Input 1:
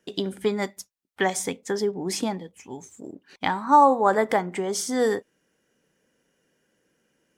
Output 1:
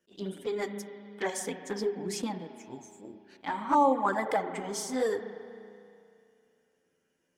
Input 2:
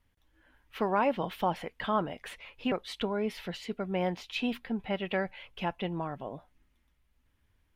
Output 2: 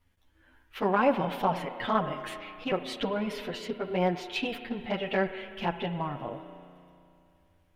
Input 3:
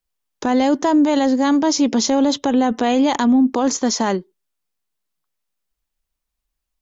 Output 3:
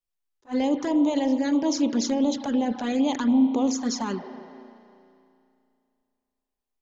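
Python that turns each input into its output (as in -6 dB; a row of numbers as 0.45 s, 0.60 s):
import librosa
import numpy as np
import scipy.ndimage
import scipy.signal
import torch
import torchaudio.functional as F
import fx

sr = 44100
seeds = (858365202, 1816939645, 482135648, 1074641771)

y = fx.rev_spring(x, sr, rt60_s=2.6, pass_ms=(34,), chirp_ms=50, drr_db=8.5)
y = fx.env_flanger(y, sr, rest_ms=11.6, full_db=-11.5)
y = fx.attack_slew(y, sr, db_per_s=390.0)
y = librosa.util.normalize(y) * 10.0 ** (-12 / 20.0)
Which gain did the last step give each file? -4.5 dB, +5.0 dB, -6.5 dB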